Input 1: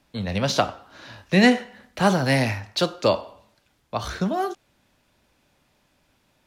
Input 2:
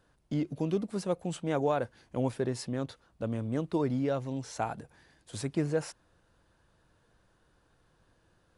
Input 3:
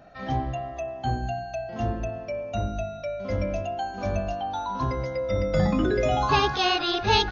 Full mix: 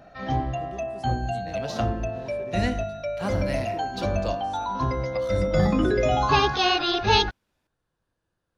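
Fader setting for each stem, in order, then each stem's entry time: -12.5, -12.0, +1.5 dB; 1.20, 0.00, 0.00 s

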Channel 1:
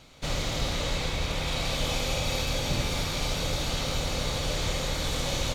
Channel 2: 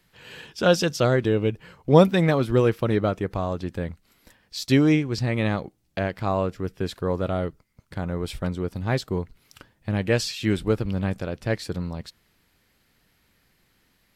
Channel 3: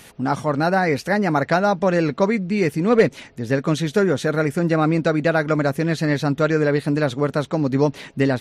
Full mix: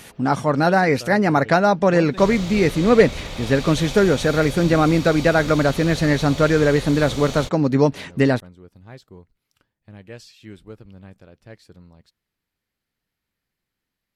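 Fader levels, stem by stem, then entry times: -2.5, -17.0, +2.0 dB; 1.95, 0.00, 0.00 s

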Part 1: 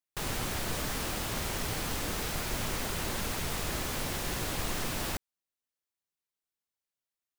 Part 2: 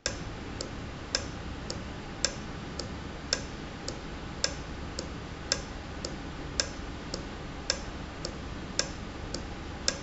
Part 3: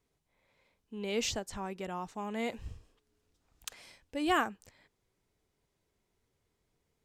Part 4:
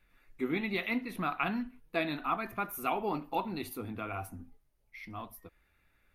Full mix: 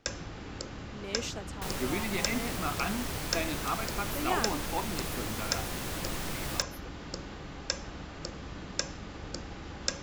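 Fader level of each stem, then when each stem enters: -3.0, -3.0, -4.5, -1.5 dB; 1.45, 0.00, 0.00, 1.40 s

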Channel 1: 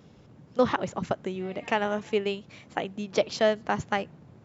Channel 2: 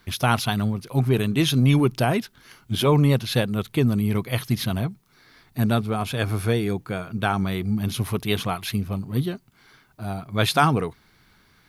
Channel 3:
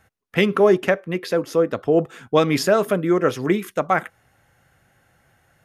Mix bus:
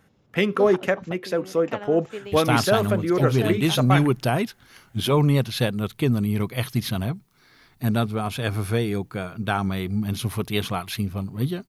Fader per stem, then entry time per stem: -9.0, -1.0, -3.5 dB; 0.00, 2.25, 0.00 s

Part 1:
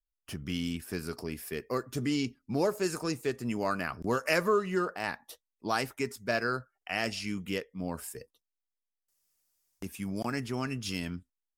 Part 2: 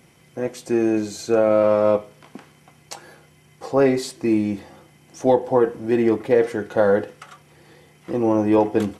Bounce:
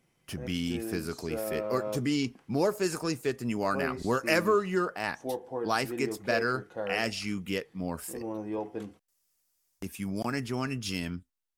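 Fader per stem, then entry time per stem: +1.5, -17.5 dB; 0.00, 0.00 s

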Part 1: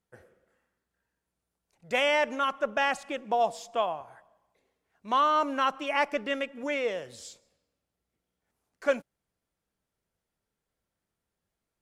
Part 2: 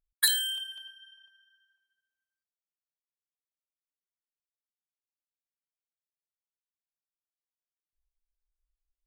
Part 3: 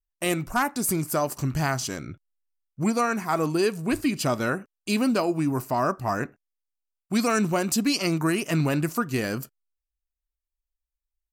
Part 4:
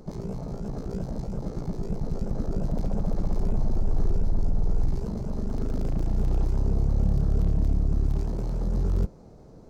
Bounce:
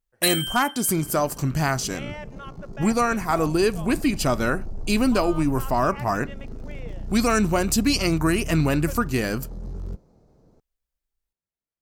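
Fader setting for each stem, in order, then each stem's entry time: -13.5, +1.0, +2.5, -8.5 dB; 0.00, 0.00, 0.00, 0.90 s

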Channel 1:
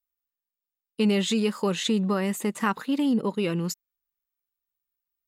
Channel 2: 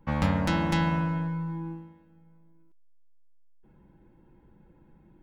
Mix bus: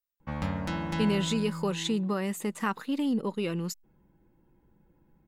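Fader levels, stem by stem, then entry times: -4.5, -6.5 dB; 0.00, 0.20 s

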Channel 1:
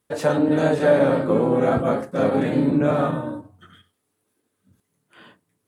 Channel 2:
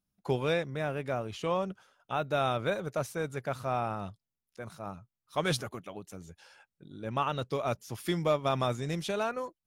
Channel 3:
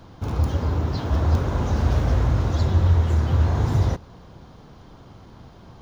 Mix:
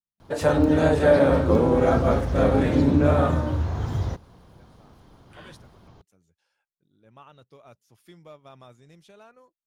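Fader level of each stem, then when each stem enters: -0.5, -19.0, -6.5 dB; 0.20, 0.00, 0.20 s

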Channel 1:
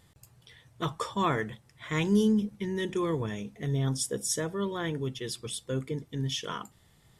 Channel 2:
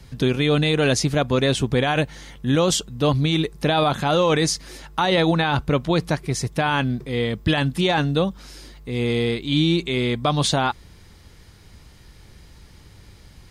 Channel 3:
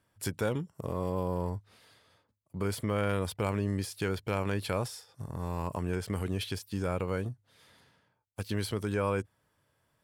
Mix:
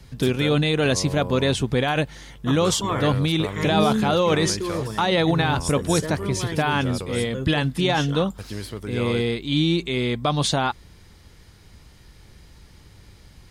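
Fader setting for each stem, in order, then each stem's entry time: +1.0, -1.5, -0.5 dB; 1.65, 0.00, 0.00 s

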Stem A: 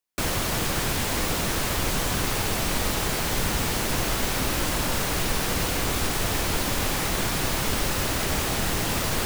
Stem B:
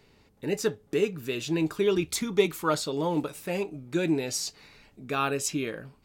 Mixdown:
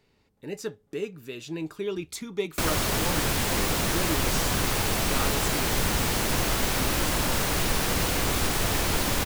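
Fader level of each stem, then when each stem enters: 0.0, -6.5 dB; 2.40, 0.00 s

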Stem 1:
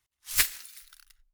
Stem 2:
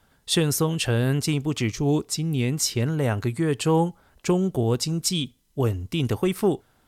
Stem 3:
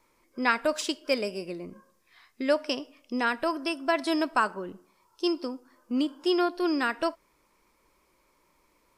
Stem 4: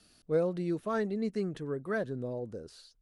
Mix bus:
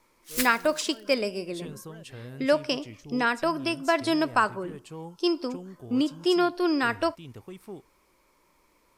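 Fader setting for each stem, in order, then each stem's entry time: -5.0, -20.0, +2.0, -18.5 dB; 0.00, 1.25, 0.00, 0.00 s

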